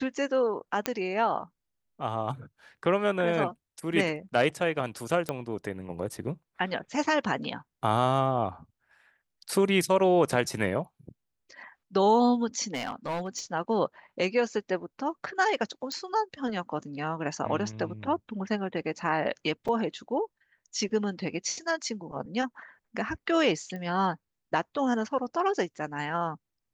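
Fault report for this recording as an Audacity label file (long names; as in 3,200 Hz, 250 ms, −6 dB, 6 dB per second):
0.860000	0.860000	click −10 dBFS
5.290000	5.290000	click −15 dBFS
12.730000	13.400000	clipping −27.5 dBFS
15.920000	15.920000	click −21 dBFS
19.680000	19.690000	drop-out 5.4 ms
23.760000	23.760000	click −27 dBFS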